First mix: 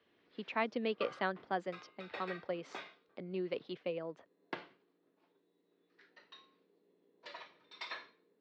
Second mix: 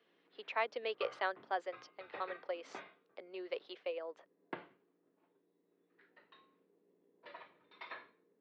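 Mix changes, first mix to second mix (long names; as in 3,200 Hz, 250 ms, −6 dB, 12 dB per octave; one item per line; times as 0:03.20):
speech: add high-pass filter 440 Hz 24 dB per octave
background: add high-frequency loss of the air 400 metres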